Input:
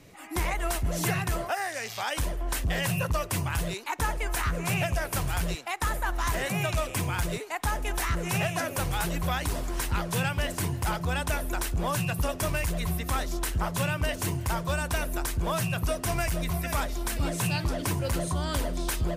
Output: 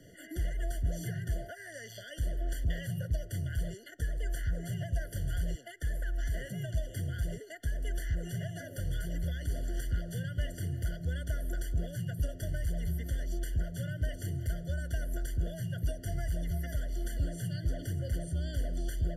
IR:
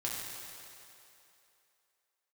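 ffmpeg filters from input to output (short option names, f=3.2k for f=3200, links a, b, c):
-filter_complex "[0:a]acrossover=split=130[a][b];[b]acompressor=threshold=-39dB:ratio=6[c];[a][c]amix=inputs=2:normalize=0,afftfilt=real='re*eq(mod(floor(b*sr/1024/700),2),0)':imag='im*eq(mod(floor(b*sr/1024/700),2),0)':win_size=1024:overlap=0.75,volume=-1.5dB"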